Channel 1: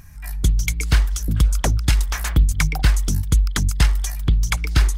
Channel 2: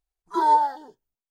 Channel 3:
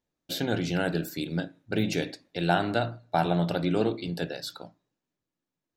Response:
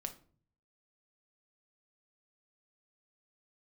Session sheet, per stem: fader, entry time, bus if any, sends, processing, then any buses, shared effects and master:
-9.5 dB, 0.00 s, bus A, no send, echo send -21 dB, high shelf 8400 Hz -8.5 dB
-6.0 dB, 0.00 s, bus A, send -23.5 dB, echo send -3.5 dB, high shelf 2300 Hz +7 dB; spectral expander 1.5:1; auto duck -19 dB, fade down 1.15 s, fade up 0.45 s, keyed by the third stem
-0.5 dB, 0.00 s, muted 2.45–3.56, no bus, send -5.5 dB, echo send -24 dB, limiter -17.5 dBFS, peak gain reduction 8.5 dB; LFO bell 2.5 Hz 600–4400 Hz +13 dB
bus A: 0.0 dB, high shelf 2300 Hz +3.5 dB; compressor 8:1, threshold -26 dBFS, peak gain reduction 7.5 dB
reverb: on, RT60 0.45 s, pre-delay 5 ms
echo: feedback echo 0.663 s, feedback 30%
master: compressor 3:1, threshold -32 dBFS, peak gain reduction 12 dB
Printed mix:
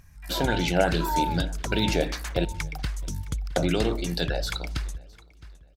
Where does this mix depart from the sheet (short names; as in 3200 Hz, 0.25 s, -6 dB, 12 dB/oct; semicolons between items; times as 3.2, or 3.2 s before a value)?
stem 2: missing spectral expander 1.5:1; master: missing compressor 3:1, threshold -32 dBFS, peak gain reduction 12 dB